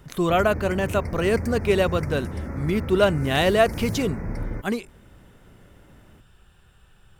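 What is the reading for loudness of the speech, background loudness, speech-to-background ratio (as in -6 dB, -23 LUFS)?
-23.0 LUFS, -32.0 LUFS, 9.0 dB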